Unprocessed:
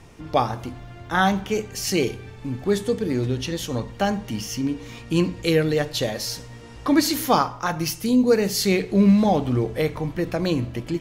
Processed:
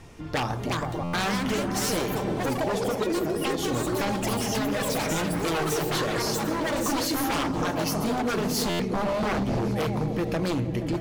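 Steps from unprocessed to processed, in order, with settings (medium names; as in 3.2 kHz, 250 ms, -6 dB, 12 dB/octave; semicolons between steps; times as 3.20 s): 2.95–3.54 s: formants replaced by sine waves; delay with an opening low-pass 158 ms, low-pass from 200 Hz, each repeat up 1 oct, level -6 dB; wavefolder -18 dBFS; ever faster or slower copies 447 ms, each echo +5 st, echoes 3; compression, threshold -23 dBFS, peak gain reduction 6.5 dB; buffer glitch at 1.03/8.69 s, samples 512, times 8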